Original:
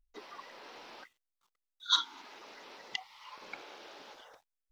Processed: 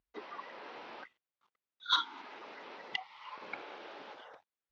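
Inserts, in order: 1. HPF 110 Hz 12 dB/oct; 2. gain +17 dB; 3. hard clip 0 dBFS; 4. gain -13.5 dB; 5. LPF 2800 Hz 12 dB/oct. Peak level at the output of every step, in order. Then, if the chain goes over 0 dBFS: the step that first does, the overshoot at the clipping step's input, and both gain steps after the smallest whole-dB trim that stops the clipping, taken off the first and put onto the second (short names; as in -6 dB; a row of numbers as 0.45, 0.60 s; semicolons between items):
-13.5, +3.5, 0.0, -13.5, -16.5 dBFS; step 2, 3.5 dB; step 2 +13 dB, step 4 -9.5 dB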